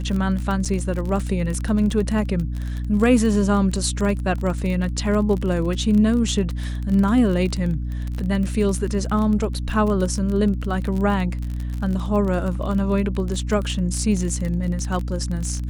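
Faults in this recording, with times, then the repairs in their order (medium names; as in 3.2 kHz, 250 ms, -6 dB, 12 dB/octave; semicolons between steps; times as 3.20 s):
crackle 30 per s -25 dBFS
hum 60 Hz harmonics 5 -26 dBFS
0.65–0.66 s: dropout 6.2 ms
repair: de-click; de-hum 60 Hz, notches 5; interpolate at 0.65 s, 6.2 ms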